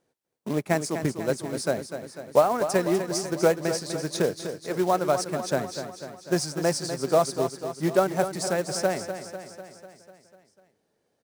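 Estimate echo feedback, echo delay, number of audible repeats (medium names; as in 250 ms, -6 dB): 60%, 248 ms, 6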